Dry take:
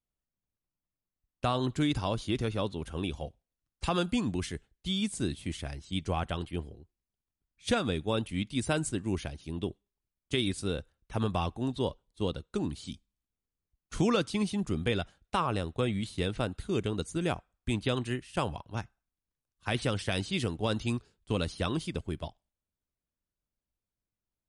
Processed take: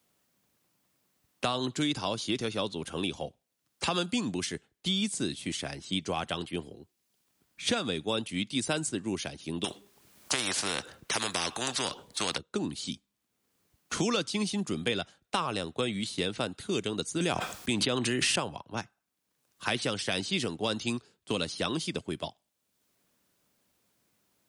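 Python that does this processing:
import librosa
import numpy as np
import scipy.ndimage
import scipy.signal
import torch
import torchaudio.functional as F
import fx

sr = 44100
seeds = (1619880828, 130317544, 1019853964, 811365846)

y = fx.spectral_comp(x, sr, ratio=4.0, at=(9.64, 12.38))
y = fx.env_flatten(y, sr, amount_pct=100, at=(17.2, 18.4))
y = scipy.signal.sosfilt(scipy.signal.butter(2, 170.0, 'highpass', fs=sr, output='sos'), y)
y = fx.dynamic_eq(y, sr, hz=5600.0, q=0.78, threshold_db=-52.0, ratio=4.0, max_db=7)
y = fx.band_squash(y, sr, depth_pct=70)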